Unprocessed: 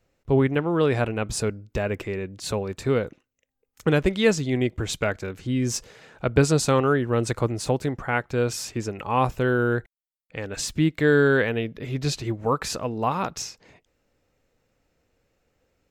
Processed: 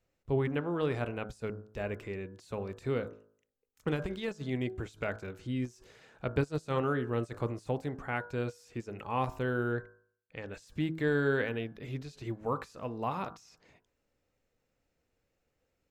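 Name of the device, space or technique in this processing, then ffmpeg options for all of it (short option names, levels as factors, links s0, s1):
de-esser from a sidechain: -filter_complex "[0:a]bandreject=f=53.54:t=h:w=4,bandreject=f=107.08:t=h:w=4,bandreject=f=160.62:t=h:w=4,bandreject=f=214.16:t=h:w=4,bandreject=f=267.7:t=h:w=4,bandreject=f=321.24:t=h:w=4,bandreject=f=374.78:t=h:w=4,bandreject=f=428.32:t=h:w=4,bandreject=f=481.86:t=h:w=4,bandreject=f=535.4:t=h:w=4,bandreject=f=588.94:t=h:w=4,bandreject=f=642.48:t=h:w=4,bandreject=f=696.02:t=h:w=4,bandreject=f=749.56:t=h:w=4,bandreject=f=803.1:t=h:w=4,bandreject=f=856.64:t=h:w=4,bandreject=f=910.18:t=h:w=4,bandreject=f=963.72:t=h:w=4,bandreject=f=1017.26:t=h:w=4,bandreject=f=1070.8:t=h:w=4,bandreject=f=1124.34:t=h:w=4,bandreject=f=1177.88:t=h:w=4,bandreject=f=1231.42:t=h:w=4,bandreject=f=1284.96:t=h:w=4,bandreject=f=1338.5:t=h:w=4,bandreject=f=1392.04:t=h:w=4,bandreject=f=1445.58:t=h:w=4,bandreject=f=1499.12:t=h:w=4,bandreject=f=1552.66:t=h:w=4,bandreject=f=1606.2:t=h:w=4,bandreject=f=1659.74:t=h:w=4,bandreject=f=1713.28:t=h:w=4,asplit=2[s0][s1];[s1]highpass=f=6000:w=0.5412,highpass=f=6000:w=1.3066,apad=whole_len=701568[s2];[s0][s2]sidechaincompress=threshold=0.00316:ratio=8:attack=0.61:release=31,asettb=1/sr,asplit=3[s3][s4][s5];[s3]atrim=end=9.724[s6];[s4]atrim=start=9.72:end=10.48,asetpts=PTS-STARTPTS,afade=t=in:d=0.004:c=qsin,afade=t=out:st=0.756:d=0.004:c=qsin,lowpass=6300[s7];[s5]atrim=start=10.476[s8];[s6][s7]acrossfade=d=0.004:c1=hsin:c2=qsin[s9];[s9][s8]acrossfade=d=0.004:c1=qsin:c2=hsin,volume=0.355"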